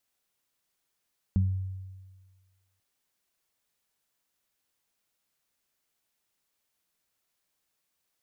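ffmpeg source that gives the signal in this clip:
-f lavfi -i "aevalsrc='0.1*pow(10,-3*t/1.5)*sin(2*PI*94.6*t)+0.0708*pow(10,-3*t/0.32)*sin(2*PI*189.2*t)':d=1.44:s=44100"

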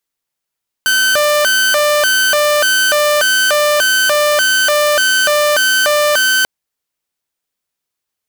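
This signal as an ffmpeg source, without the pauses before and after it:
-f lavfi -i "aevalsrc='0.422*(2*mod((1062*t+468/1.7*(0.5-abs(mod(1.7*t,1)-0.5))),1)-1)':d=5.59:s=44100"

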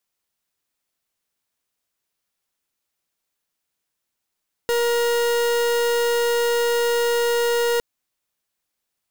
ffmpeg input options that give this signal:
-f lavfi -i "aevalsrc='0.1*(2*lt(mod(473*t,1),0.41)-1)':d=3.11:s=44100"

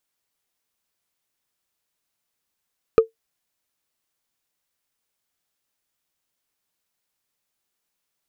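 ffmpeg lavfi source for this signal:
-f lavfi -i "aevalsrc='0.596*pow(10,-3*t/0.13)*sin(2*PI*449*t)+0.188*pow(10,-3*t/0.038)*sin(2*PI*1237.9*t)+0.0596*pow(10,-3*t/0.017)*sin(2*PI*2426.4*t)+0.0188*pow(10,-3*t/0.009)*sin(2*PI*4010.9*t)+0.00596*pow(10,-3*t/0.006)*sin(2*PI*5989.7*t)':d=0.45:s=44100"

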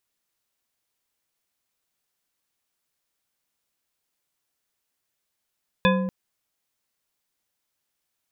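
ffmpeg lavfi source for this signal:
-f lavfi -i "aevalsrc='0.126*pow(10,-3*t/1.74)*sin(2*PI*188*t)+0.112*pow(10,-3*t/0.856)*sin(2*PI*518.3*t)+0.1*pow(10,-3*t/0.534)*sin(2*PI*1016*t)+0.0891*pow(10,-3*t/0.376)*sin(2*PI*1679.4*t)+0.0794*pow(10,-3*t/0.284)*sin(2*PI*2507.9*t)+0.0708*pow(10,-3*t/0.225)*sin(2*PI*3504.3*t)':d=0.24:s=44100"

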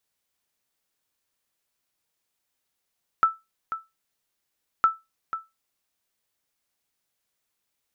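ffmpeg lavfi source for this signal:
-f lavfi -i "aevalsrc='0.299*(sin(2*PI*1320*mod(t,1.61))*exp(-6.91*mod(t,1.61)/0.21)+0.266*sin(2*PI*1320*max(mod(t,1.61)-0.49,0))*exp(-6.91*max(mod(t,1.61)-0.49,0)/0.21))':d=3.22:s=44100"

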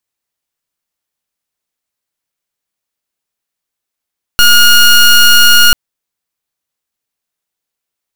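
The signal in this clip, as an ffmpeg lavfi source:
-f lavfi -i "aevalsrc='0.596*(2*lt(mod(1430*t,1),0.18)-1)':d=1.34:s=44100"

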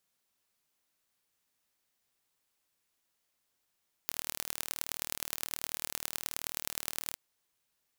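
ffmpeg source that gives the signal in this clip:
-f lavfi -i "aevalsrc='0.562*eq(mod(n,1140),0)*(0.5+0.5*eq(mod(n,4560),0))':d=3.06:s=44100"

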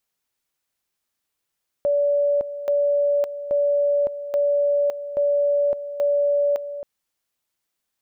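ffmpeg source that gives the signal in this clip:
-f lavfi -i "aevalsrc='pow(10,(-16.5-12*gte(mod(t,0.83),0.56))/20)*sin(2*PI*575*t)':d=4.98:s=44100"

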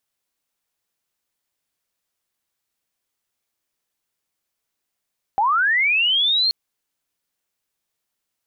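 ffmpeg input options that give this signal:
-f lavfi -i "aevalsrc='pow(10,(-15-0.5*t/1.13)/20)*sin(2*PI*(760*t+3540*t*t/(2*1.13)))':d=1.13:s=44100"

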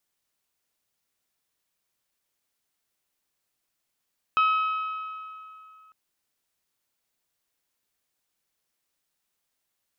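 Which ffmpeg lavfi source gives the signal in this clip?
-f lavfi -i "aevalsrc='0.133*pow(10,-3*t/2.65)*sin(2*PI*1280*t)+0.0473*pow(10,-3*t/2.152)*sin(2*PI*2560*t)+0.0168*pow(10,-3*t/2.038)*sin(2*PI*3072*t)+0.00596*pow(10,-3*t/1.906)*sin(2*PI*3840*t)+0.00211*pow(10,-3*t/1.748)*sin(2*PI*5120*t)':d=1.55:s=44100"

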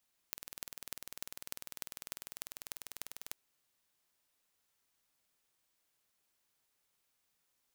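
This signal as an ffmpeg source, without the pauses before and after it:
-f lavfi -i "aevalsrc='0.282*eq(mod(n,2194),0)*(0.5+0.5*eq(mod(n,13164),0))':d=3:s=44100"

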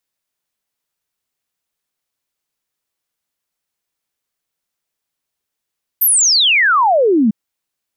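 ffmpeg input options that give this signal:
-f lavfi -i "aevalsrc='0.355*clip(min(t,1.3-t)/0.01,0,1)*sin(2*PI*14000*1.3/log(200/14000)*(exp(log(200/14000)*t/1.3)-1))':d=1.3:s=44100"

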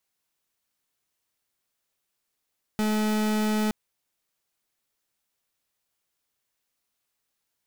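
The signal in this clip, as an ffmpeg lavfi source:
-f lavfi -i "aevalsrc='0.0596*(2*lt(mod(214*t,1),0.39)-1)':d=0.92:s=44100"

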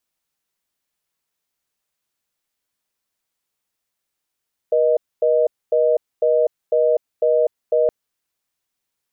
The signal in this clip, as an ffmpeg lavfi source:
-f lavfi -i "aevalsrc='0.158*(sin(2*PI*480*t)+sin(2*PI*620*t))*clip(min(mod(t,0.5),0.25-mod(t,0.5))/0.005,0,1)':d=3.17:s=44100"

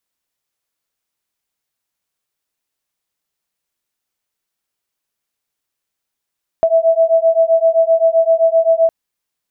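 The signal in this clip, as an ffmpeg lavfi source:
-f lavfi -i "aevalsrc='0.237*(sin(2*PI*653*t)+sin(2*PI*660.7*t))':d=2.26:s=44100"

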